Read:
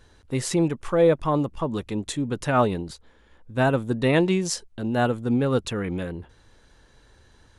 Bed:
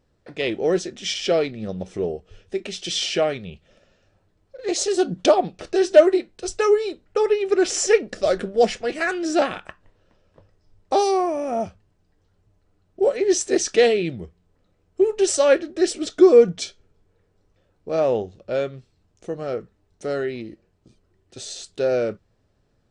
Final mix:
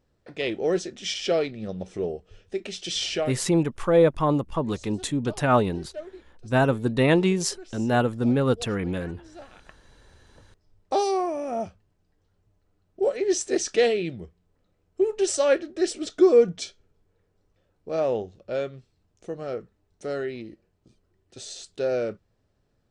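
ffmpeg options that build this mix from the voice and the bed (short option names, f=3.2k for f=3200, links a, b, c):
-filter_complex "[0:a]adelay=2950,volume=0.5dB[a];[1:a]volume=17.5dB,afade=t=out:st=3.13:d=0.27:silence=0.0794328,afade=t=in:st=9.5:d=0.47:silence=0.0891251[b];[a][b]amix=inputs=2:normalize=0"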